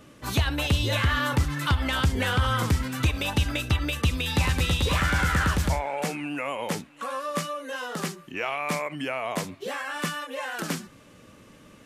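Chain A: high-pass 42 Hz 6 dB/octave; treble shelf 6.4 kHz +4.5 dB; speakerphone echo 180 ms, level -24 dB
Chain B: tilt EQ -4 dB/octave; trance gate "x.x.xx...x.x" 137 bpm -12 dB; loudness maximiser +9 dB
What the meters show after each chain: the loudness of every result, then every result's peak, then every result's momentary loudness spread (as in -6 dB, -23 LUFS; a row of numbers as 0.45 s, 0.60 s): -27.0 LUFS, -14.5 LUFS; -12.0 dBFS, -1.0 dBFS; 9 LU, 15 LU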